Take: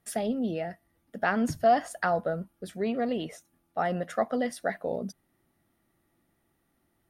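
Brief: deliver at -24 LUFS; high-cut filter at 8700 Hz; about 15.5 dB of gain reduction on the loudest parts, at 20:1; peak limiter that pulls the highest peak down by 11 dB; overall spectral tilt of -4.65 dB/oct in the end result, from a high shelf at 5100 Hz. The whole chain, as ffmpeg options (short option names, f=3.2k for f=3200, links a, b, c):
-af "lowpass=8.7k,highshelf=f=5.1k:g=7.5,acompressor=threshold=-32dB:ratio=20,volume=17dB,alimiter=limit=-14dB:level=0:latency=1"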